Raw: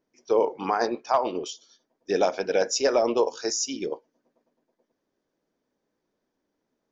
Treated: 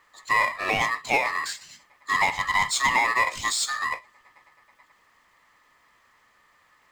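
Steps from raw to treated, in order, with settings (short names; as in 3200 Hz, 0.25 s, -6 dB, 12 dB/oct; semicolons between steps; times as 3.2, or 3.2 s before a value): ring modulator 1500 Hz; power-law curve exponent 0.7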